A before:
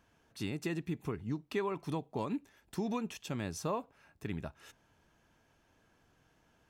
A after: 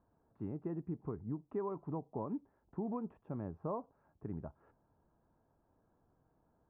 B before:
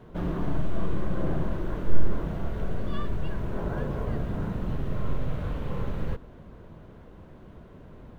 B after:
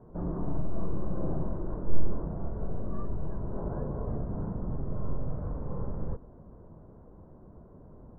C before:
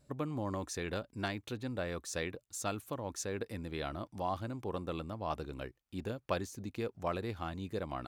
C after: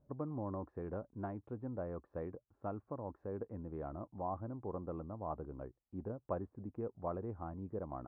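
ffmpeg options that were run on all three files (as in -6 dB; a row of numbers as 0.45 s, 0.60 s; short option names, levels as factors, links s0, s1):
-af "lowpass=f=1100:w=0.5412,lowpass=f=1100:w=1.3066,volume=0.668"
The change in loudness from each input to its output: -4.0 LU, -3.5 LU, -4.5 LU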